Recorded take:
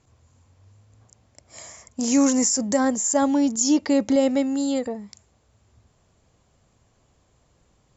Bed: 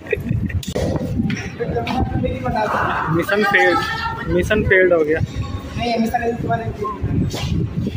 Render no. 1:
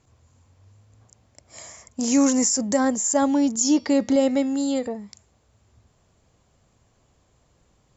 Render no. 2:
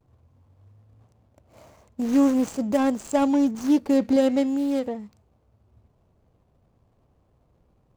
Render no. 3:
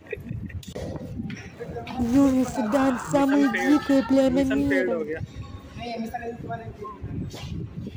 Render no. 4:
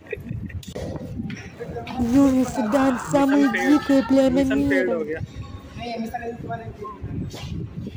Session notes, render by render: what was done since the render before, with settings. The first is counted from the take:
3.52–4.88 de-hum 238.7 Hz, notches 24
median filter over 25 samples; vibrato 0.45 Hz 35 cents
add bed -13 dB
gain +2.5 dB

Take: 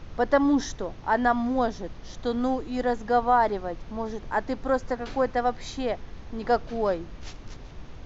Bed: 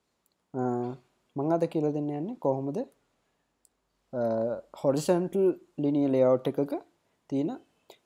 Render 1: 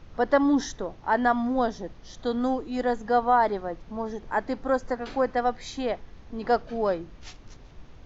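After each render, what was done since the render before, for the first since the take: noise print and reduce 6 dB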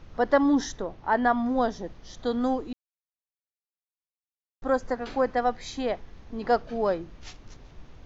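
0.82–1.46 air absorption 75 m; 2.73–4.62 mute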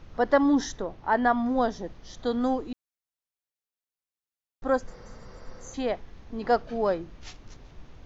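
4.92–5.72 spectral repair 200–6000 Hz before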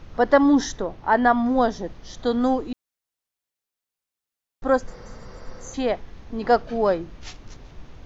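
gain +5 dB

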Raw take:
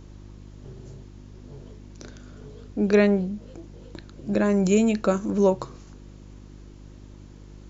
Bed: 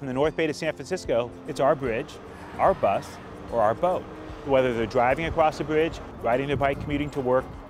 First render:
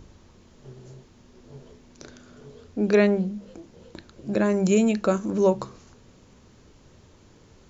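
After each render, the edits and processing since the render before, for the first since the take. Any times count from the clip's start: de-hum 50 Hz, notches 7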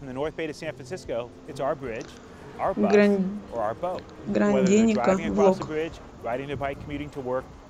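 add bed -6 dB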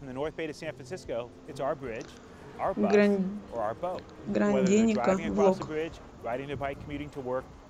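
gain -4 dB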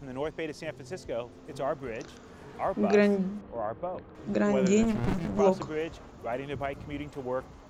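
3.41–4.15 air absorption 490 m; 4.83–5.39 running maximum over 65 samples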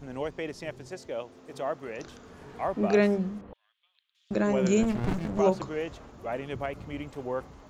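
0.88–1.99 HPF 240 Hz 6 dB/oct; 3.53–4.31 ladder high-pass 3000 Hz, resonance 60%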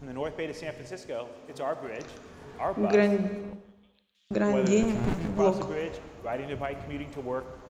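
feedback echo 0.163 s, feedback 45%, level -20 dB; non-linear reverb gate 0.5 s falling, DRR 10 dB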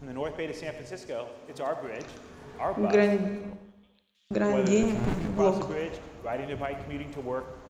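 echo 90 ms -12 dB

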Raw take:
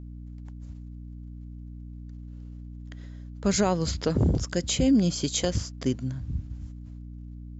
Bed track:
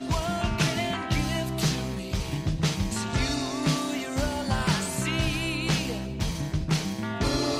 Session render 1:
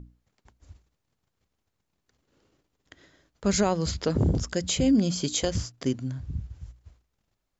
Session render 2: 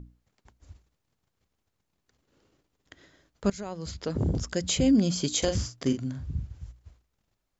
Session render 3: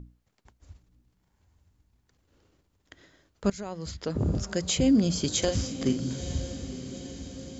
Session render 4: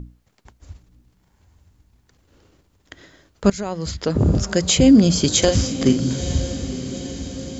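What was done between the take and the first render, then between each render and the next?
notches 60/120/180/240/300 Hz
3.5–4.73 fade in, from -20 dB; 5.38–6.55 doubler 43 ms -8 dB
diffused feedback echo 0.929 s, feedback 58%, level -12 dB
gain +10 dB

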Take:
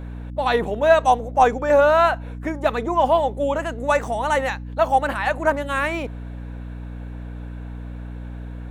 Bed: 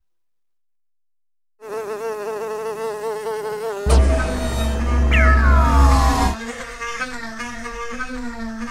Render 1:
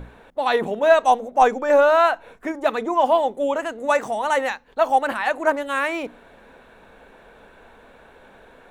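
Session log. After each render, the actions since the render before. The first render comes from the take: notches 60/120/180/240/300 Hz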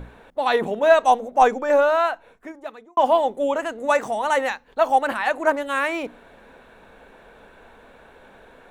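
1.47–2.97 fade out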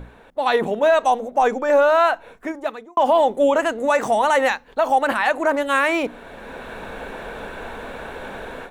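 AGC gain up to 15.5 dB; limiter -8.5 dBFS, peak gain reduction 8 dB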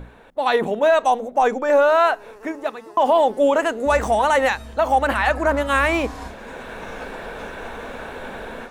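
add bed -17.5 dB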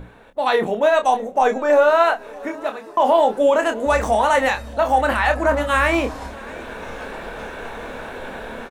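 doubler 27 ms -7 dB; feedback echo 0.638 s, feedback 59%, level -23 dB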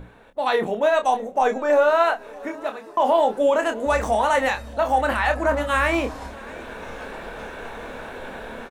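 gain -3 dB

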